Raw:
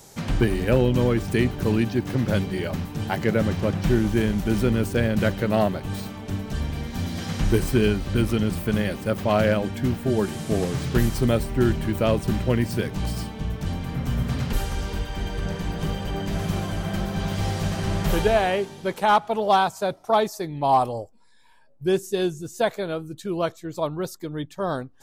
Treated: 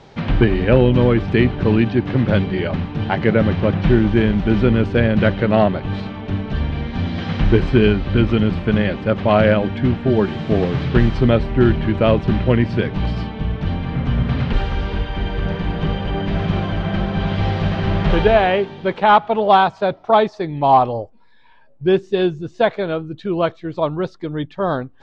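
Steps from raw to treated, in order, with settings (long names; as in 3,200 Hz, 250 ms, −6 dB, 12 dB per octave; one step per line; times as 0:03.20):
low-pass filter 3,600 Hz 24 dB per octave
level +6.5 dB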